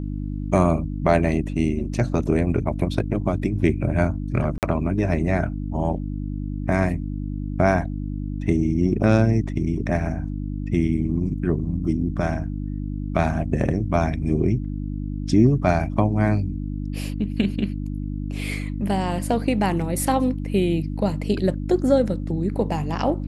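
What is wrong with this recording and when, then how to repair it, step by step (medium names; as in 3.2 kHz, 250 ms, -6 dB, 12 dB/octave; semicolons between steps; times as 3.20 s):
hum 50 Hz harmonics 6 -28 dBFS
4.58–4.63 s: dropout 48 ms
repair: de-hum 50 Hz, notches 6; interpolate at 4.58 s, 48 ms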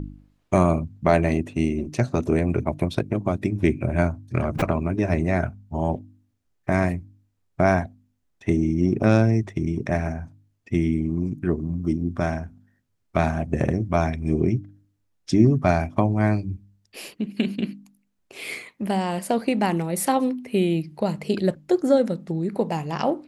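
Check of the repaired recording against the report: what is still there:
nothing left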